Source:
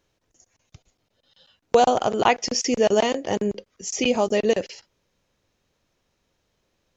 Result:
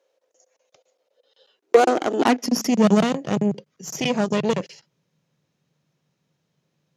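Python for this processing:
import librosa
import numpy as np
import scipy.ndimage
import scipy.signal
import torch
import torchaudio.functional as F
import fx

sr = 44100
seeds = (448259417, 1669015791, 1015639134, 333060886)

y = fx.cheby_harmonics(x, sr, harmonics=(6,), levels_db=(-14,), full_scale_db=-4.0)
y = fx.filter_sweep_highpass(y, sr, from_hz=520.0, to_hz=150.0, start_s=1.11, end_s=3.31, q=7.4)
y = F.gain(torch.from_numpy(y), -4.0).numpy()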